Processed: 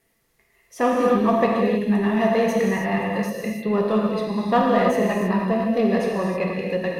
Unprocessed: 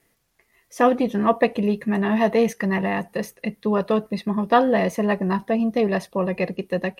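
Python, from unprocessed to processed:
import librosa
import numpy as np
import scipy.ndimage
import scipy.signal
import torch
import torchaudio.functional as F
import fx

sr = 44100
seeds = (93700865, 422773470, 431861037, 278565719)

p1 = np.clip(x, -10.0 ** (-18.5 / 20.0), 10.0 ** (-18.5 / 20.0))
p2 = x + (p1 * 10.0 ** (-8.5 / 20.0))
p3 = fx.rev_gated(p2, sr, seeds[0], gate_ms=340, shape='flat', drr_db=-2.5)
y = p3 * 10.0 ** (-6.0 / 20.0)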